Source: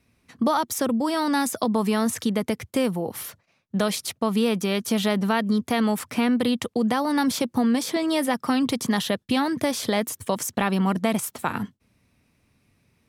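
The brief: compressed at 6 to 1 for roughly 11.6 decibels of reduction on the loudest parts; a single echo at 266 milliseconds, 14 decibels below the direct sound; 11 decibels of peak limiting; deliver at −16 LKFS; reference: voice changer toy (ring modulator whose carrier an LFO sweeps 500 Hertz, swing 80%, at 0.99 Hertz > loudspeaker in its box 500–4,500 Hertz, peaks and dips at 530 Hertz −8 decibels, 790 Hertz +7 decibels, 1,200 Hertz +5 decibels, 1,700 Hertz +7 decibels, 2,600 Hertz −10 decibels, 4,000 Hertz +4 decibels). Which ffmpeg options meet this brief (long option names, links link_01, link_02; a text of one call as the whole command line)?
ffmpeg -i in.wav -af "acompressor=threshold=-31dB:ratio=6,alimiter=level_in=2.5dB:limit=-24dB:level=0:latency=1,volume=-2.5dB,aecho=1:1:266:0.2,aeval=exprs='val(0)*sin(2*PI*500*n/s+500*0.8/0.99*sin(2*PI*0.99*n/s))':channel_layout=same,highpass=500,equalizer=frequency=530:width_type=q:width=4:gain=-8,equalizer=frequency=790:width_type=q:width=4:gain=7,equalizer=frequency=1200:width_type=q:width=4:gain=5,equalizer=frequency=1700:width_type=q:width=4:gain=7,equalizer=frequency=2600:width_type=q:width=4:gain=-10,equalizer=frequency=4000:width_type=q:width=4:gain=4,lowpass=frequency=4500:width=0.5412,lowpass=frequency=4500:width=1.3066,volume=23dB" out.wav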